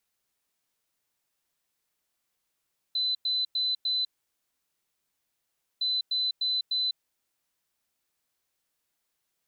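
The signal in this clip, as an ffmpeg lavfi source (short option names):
-f lavfi -i "aevalsrc='0.0596*sin(2*PI*4020*t)*clip(min(mod(mod(t,2.86),0.3),0.2-mod(mod(t,2.86),0.3))/0.005,0,1)*lt(mod(t,2.86),1.2)':d=5.72:s=44100"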